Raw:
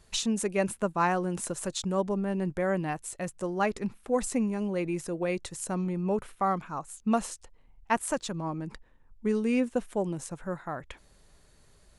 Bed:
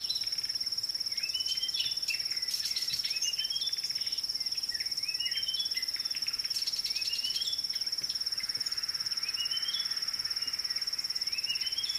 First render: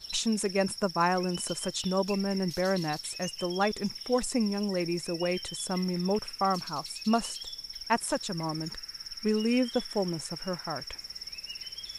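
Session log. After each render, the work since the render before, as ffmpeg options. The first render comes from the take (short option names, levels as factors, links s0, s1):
-filter_complex "[1:a]volume=0.398[s0];[0:a][s0]amix=inputs=2:normalize=0"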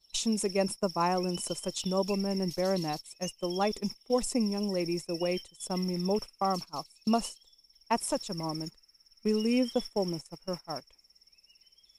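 -af "agate=range=0.112:threshold=0.02:ratio=16:detection=peak,equalizer=f=100:t=o:w=0.67:g=-11,equalizer=f=1600:t=o:w=0.67:g=-11,equalizer=f=4000:t=o:w=0.67:g=-3"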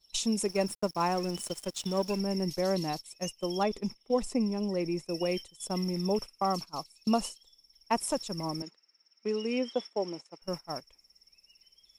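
-filter_complex "[0:a]asettb=1/sr,asplit=3[s0][s1][s2];[s0]atrim=end=0.484[s3];[s1]atrim=start=0.48:end=2.2,asetpts=PTS-STARTPTS,afade=t=in:d=0.004:c=qsin,afade=t=out:st=1.716:d=0.004:c=qsin,aeval=exprs='sgn(val(0))*max(abs(val(0))-0.00562,0)':c=same[s4];[s2]atrim=start=2.196[s5];[s3][s4]acrossfade=d=0.004:c1=hsin:c2=qsin[s6];[s6][s5]acrossfade=d=0.004:c1=qsin:c2=hsin,asettb=1/sr,asplit=3[s7][s8][s9];[s7]atrim=end=3.634[s10];[s8]atrim=start=3.63:end=5.06,asetpts=PTS-STARTPTS,afade=t=in:d=0.004:c=qsin,afade=t=out:st=1.426:d=0.004:c=qsin,highshelf=f=5200:g=-11.5[s11];[s9]atrim=start=5.056[s12];[s10][s11]acrossfade=d=0.004:c1=hsin:c2=qsin[s13];[s13][s12]acrossfade=d=0.004:c1=qsin:c2=hsin,asettb=1/sr,asplit=3[s14][s15][s16];[s14]atrim=end=8.624[s17];[s15]atrim=start=8.62:end=10.42,asetpts=PTS-STARTPTS,afade=t=in:d=0.004:c=qsin,afade=t=out:st=1.796:d=0.004:c=qsin,highpass=320,lowpass=4700[s18];[s16]atrim=start=10.416[s19];[s17][s18]acrossfade=d=0.004:c1=hsin:c2=qsin[s20];[s20][s19]acrossfade=d=0.004:c1=qsin:c2=hsin"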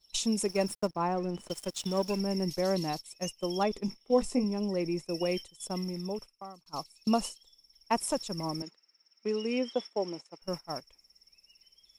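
-filter_complex "[0:a]asettb=1/sr,asplit=3[s0][s1][s2];[s0]atrim=end=0.874[s3];[s1]atrim=start=0.87:end=1.5,asetpts=PTS-STARTPTS,afade=t=in:d=0.004:c=qsin,afade=t=out:st=0.626:d=0.004:c=qsin,lowpass=f=1200:p=1[s4];[s2]atrim=start=1.496[s5];[s3][s4]acrossfade=d=0.004:c1=hsin:c2=qsin[s6];[s6][s5]acrossfade=d=0.004:c1=qsin:c2=hsin,asettb=1/sr,asplit=3[s7][s8][s9];[s7]atrim=end=3.864[s10];[s8]atrim=start=3.86:end=4.44,asetpts=PTS-STARTPTS,afade=t=in:d=0.004:c=qsin,afade=t=out:st=0.576:d=0.004:c=qsin,asplit=2[s11][s12];[s12]adelay=20,volume=0.473[s13];[s11][s13]amix=inputs=2:normalize=0,atrim=end_sample=25578[s14];[s9]atrim=start=4.436[s15];[s10][s14]acrossfade=d=0.004:c1=hsin:c2=qsin[s16];[s16][s15]acrossfade=d=0.004:c1=qsin:c2=hsin,asplit=2[s17][s18];[s17]atrim=end=6.66,asetpts=PTS-STARTPTS,afade=t=out:st=5.47:d=1.19[s19];[s18]atrim=start=6.66,asetpts=PTS-STARTPTS,afade=t=in:d=0.004:c=hsin[s20];[s19][s20]concat=n=2:v=0:a=1"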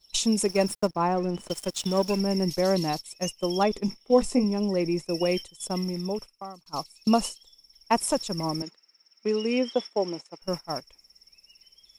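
-af "volume=1.88"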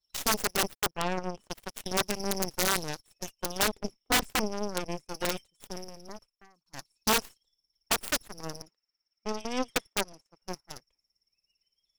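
-af "aeval=exprs='0.376*(cos(1*acos(clip(val(0)/0.376,-1,1)))-cos(1*PI/2))+0.0266*(cos(3*acos(clip(val(0)/0.376,-1,1)))-cos(3*PI/2))+0.0266*(cos(4*acos(clip(val(0)/0.376,-1,1)))-cos(4*PI/2))+0.0473*(cos(7*acos(clip(val(0)/0.376,-1,1)))-cos(7*PI/2))+0.0119*(cos(8*acos(clip(val(0)/0.376,-1,1)))-cos(8*PI/2))':c=same,aeval=exprs='(mod(5.96*val(0)+1,2)-1)/5.96':c=same"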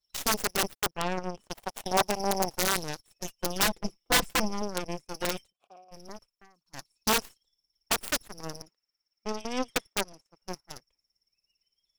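-filter_complex "[0:a]asettb=1/sr,asplit=3[s0][s1][s2];[s0]atrim=end=1.534[s3];[s1]atrim=start=1.53:end=2.58,asetpts=PTS-STARTPTS,afade=t=in:d=0.004:c=qsin,afade=t=out:st=1.046:d=0.004:c=qsin,equalizer=f=780:t=o:w=0.99:g=10.5[s4];[s2]atrim=start=2.576[s5];[s3][s4]acrossfade=d=0.004:c1=hsin:c2=qsin[s6];[s6][s5]acrossfade=d=0.004:c1=qsin:c2=hsin,asettb=1/sr,asplit=3[s7][s8][s9];[s7]atrim=end=3.244[s10];[s8]atrim=start=3.24:end=4.62,asetpts=PTS-STARTPTS,afade=t=in:d=0.004:c=qsin,afade=t=out:st=1.376:d=0.004:c=qsin,aecho=1:1:5.9:0.76,atrim=end_sample=60858[s11];[s9]atrim=start=4.616[s12];[s10][s11]acrossfade=d=0.004:c1=hsin:c2=qsin[s13];[s13][s12]acrossfade=d=0.004:c1=qsin:c2=hsin,asplit=3[s14][s15][s16];[s14]afade=t=out:st=5.51:d=0.02[s17];[s15]asplit=3[s18][s19][s20];[s18]bandpass=f=730:t=q:w=8,volume=1[s21];[s19]bandpass=f=1090:t=q:w=8,volume=0.501[s22];[s20]bandpass=f=2440:t=q:w=8,volume=0.355[s23];[s21][s22][s23]amix=inputs=3:normalize=0,afade=t=in:st=5.51:d=0.02,afade=t=out:st=5.91:d=0.02[s24];[s16]afade=t=in:st=5.91:d=0.02[s25];[s17][s24][s25]amix=inputs=3:normalize=0"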